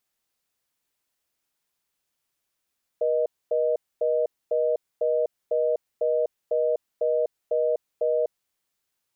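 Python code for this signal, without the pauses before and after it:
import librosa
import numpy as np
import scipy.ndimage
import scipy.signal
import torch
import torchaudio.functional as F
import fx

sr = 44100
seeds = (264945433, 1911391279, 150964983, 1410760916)

y = fx.call_progress(sr, length_s=5.37, kind='reorder tone', level_db=-23.0)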